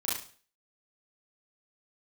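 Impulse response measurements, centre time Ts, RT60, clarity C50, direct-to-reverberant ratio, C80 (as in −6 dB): 49 ms, 0.45 s, 2.5 dB, −8.0 dB, 9.0 dB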